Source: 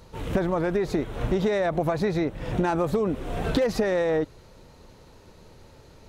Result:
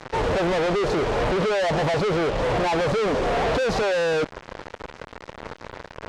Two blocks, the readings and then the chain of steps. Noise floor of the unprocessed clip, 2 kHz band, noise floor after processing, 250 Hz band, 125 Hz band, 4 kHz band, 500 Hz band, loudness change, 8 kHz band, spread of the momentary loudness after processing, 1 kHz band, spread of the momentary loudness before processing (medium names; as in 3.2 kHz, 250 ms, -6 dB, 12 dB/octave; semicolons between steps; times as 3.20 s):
-52 dBFS, +7.0 dB, -48 dBFS, -1.0 dB, +1.0 dB, +8.5 dB, +3.5 dB, +3.0 dB, +6.0 dB, 17 LU, +7.0 dB, 5 LU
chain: high-order bell 670 Hz +12 dB; fuzz box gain 43 dB, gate -39 dBFS; distance through air 99 m; trim -7.5 dB